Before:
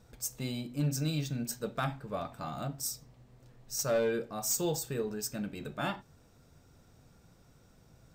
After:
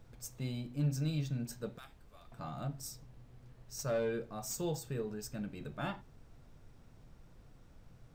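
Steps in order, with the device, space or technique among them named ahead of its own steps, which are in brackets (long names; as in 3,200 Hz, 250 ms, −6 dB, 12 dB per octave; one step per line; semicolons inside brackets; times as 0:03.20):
0:01.78–0:02.32: first difference
car interior (parametric band 120 Hz +5.5 dB 0.91 octaves; high-shelf EQ 5,000 Hz −7 dB; brown noise bed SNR 17 dB)
level −5 dB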